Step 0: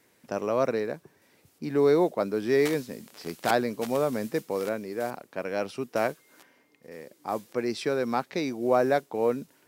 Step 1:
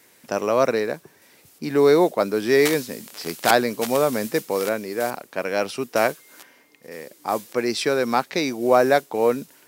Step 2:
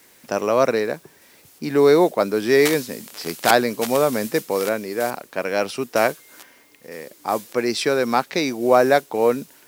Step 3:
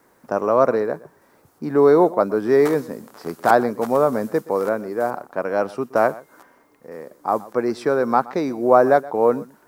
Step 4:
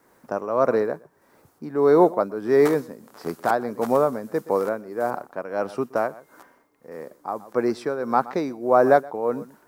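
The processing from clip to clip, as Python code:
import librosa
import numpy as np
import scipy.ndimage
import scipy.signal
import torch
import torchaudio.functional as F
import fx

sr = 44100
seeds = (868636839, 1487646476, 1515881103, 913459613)

y1 = fx.tilt_eq(x, sr, slope=1.5)
y1 = y1 * 10.0 ** (7.5 / 20.0)
y2 = fx.quant_dither(y1, sr, seeds[0], bits=10, dither='triangular')
y2 = y2 * 10.0 ** (1.5 / 20.0)
y3 = fx.high_shelf_res(y2, sr, hz=1800.0, db=-13.0, q=1.5)
y3 = y3 + 10.0 ** (-20.0 / 20.0) * np.pad(y3, (int(123 * sr / 1000.0), 0))[:len(y3)]
y4 = fx.tremolo_shape(y3, sr, shape='triangle', hz=1.6, depth_pct=70)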